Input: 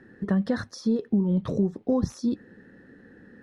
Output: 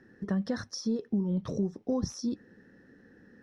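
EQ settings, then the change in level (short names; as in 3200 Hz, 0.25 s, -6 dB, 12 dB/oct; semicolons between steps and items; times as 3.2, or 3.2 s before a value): bell 5600 Hz +13 dB 0.29 oct; -6.0 dB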